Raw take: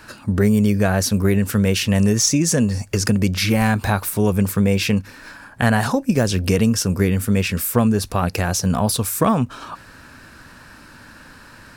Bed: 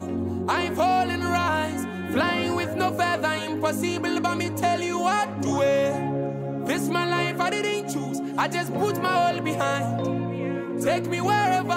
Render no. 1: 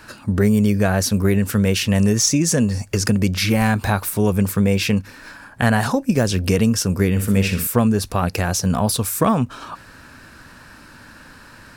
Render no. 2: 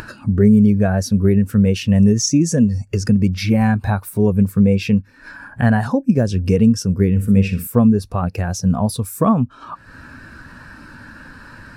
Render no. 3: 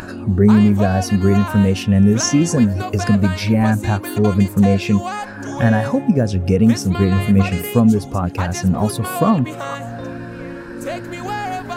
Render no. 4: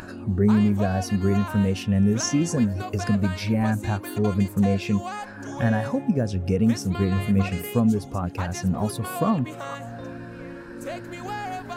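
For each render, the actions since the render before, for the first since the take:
0:07.10–0:07.67: flutter between parallel walls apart 10.5 metres, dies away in 0.42 s
upward compression, threshold −18 dBFS; every bin expanded away from the loudest bin 1.5 to 1
mix in bed −3 dB
level −7.5 dB

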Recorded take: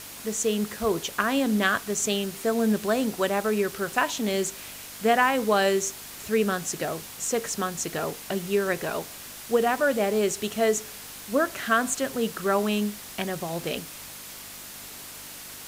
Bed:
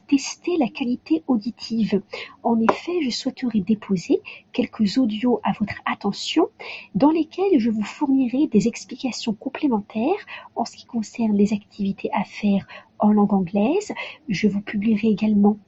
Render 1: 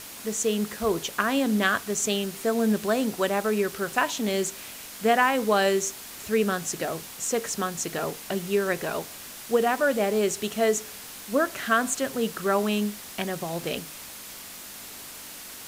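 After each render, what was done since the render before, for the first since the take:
hum removal 50 Hz, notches 3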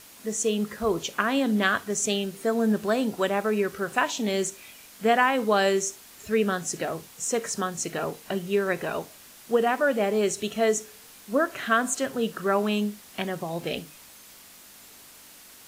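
noise reduction from a noise print 8 dB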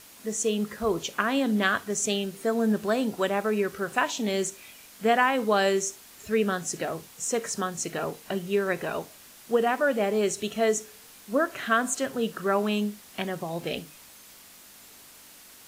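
level −1 dB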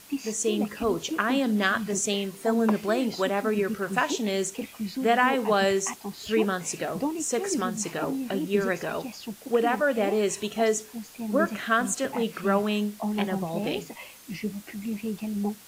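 mix in bed −12.5 dB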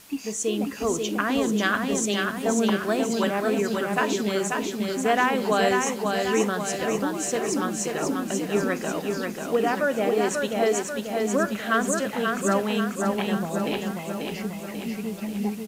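repeating echo 539 ms, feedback 54%, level −4 dB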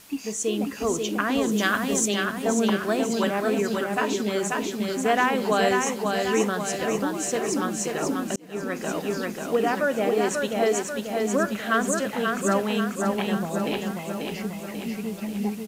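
0:01.51–0:02.08: high-shelf EQ 6,900 Hz +7.5 dB
0:03.84–0:04.43: notch comb filter 170 Hz
0:08.36–0:08.90: fade in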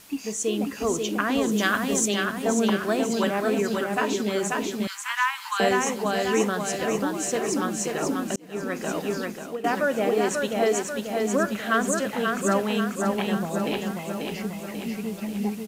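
0:04.87–0:05.60: Butterworth high-pass 890 Hz 96 dB per octave
0:09.03–0:09.64: fade out equal-power, to −16 dB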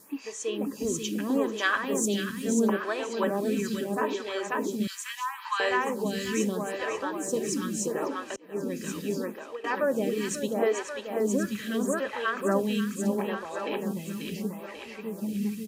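notch comb filter 710 Hz
phaser with staggered stages 0.76 Hz

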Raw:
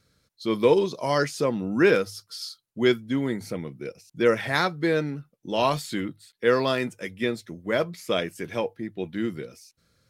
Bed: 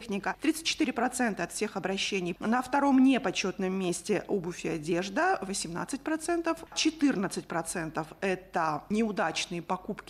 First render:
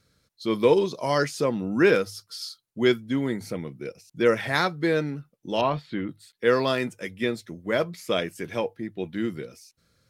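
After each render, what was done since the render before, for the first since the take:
0:05.61–0:06.09: high-frequency loss of the air 360 metres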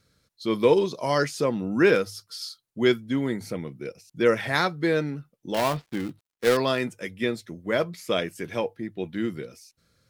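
0:05.54–0:06.57: gap after every zero crossing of 0.19 ms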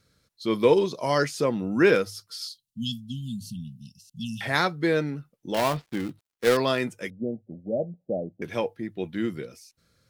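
0:02.47–0:04.41: linear-phase brick-wall band-stop 250–2,600 Hz
0:07.10–0:08.42: Chebyshev low-pass with heavy ripple 800 Hz, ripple 6 dB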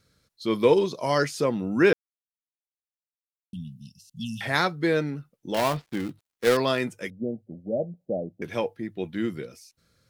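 0:01.93–0:03.53: silence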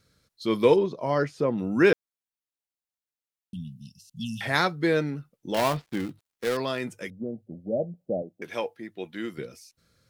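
0:00.76–0:01.58: low-pass filter 1,100 Hz 6 dB per octave
0:06.05–0:07.40: downward compressor 1.5 to 1, threshold −33 dBFS
0:08.22–0:09.38: high-pass filter 510 Hz 6 dB per octave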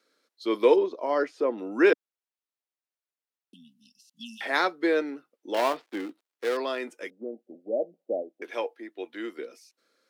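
Butterworth high-pass 280 Hz 36 dB per octave
high-shelf EQ 5,100 Hz −8.5 dB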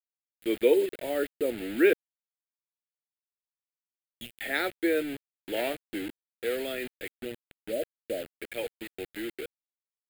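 bit-depth reduction 6 bits, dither none
phaser with its sweep stopped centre 2,500 Hz, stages 4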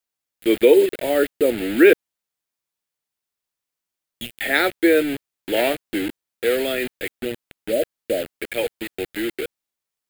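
level +10.5 dB
brickwall limiter −3 dBFS, peak gain reduction 3 dB

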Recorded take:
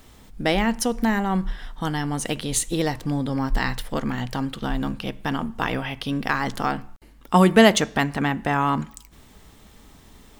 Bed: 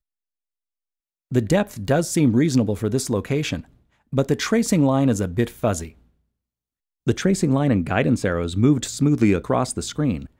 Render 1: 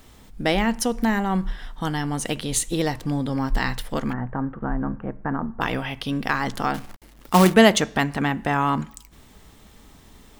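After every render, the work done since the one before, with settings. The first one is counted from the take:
0:04.13–0:05.61: Butterworth low-pass 1,700 Hz
0:06.74–0:07.54: log-companded quantiser 4 bits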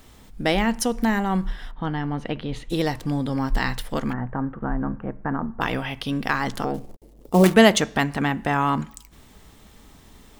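0:01.71–0:02.70: high-frequency loss of the air 350 metres
0:06.64–0:07.44: drawn EQ curve 270 Hz 0 dB, 460 Hz +7 dB, 1,500 Hz −19 dB, 7,500 Hz −9 dB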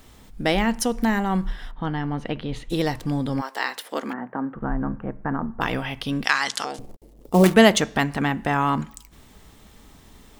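0:03.40–0:04.54: high-pass filter 480 Hz → 170 Hz 24 dB per octave
0:06.24–0:06.79: meter weighting curve ITU-R 468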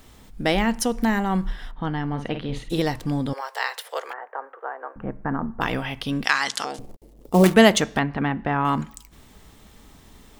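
0:02.07–0:02.80: double-tracking delay 50 ms −8 dB
0:03.33–0:04.96: Butterworth high-pass 430 Hz 48 dB per octave
0:07.99–0:08.65: high-frequency loss of the air 300 metres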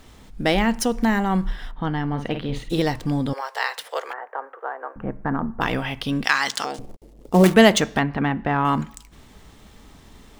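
running median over 3 samples
in parallel at −11 dB: soft clipping −17.5 dBFS, distortion −8 dB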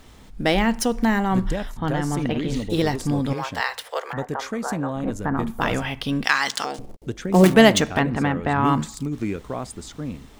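mix in bed −9.5 dB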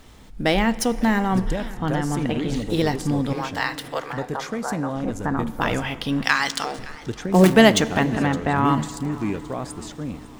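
feedback delay network reverb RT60 3.7 s, high-frequency decay 0.7×, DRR 17 dB
feedback echo with a swinging delay time 560 ms, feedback 53%, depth 167 cents, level −20.5 dB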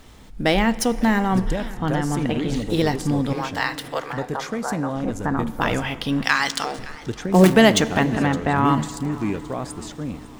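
level +1 dB
brickwall limiter −3 dBFS, peak gain reduction 2.5 dB

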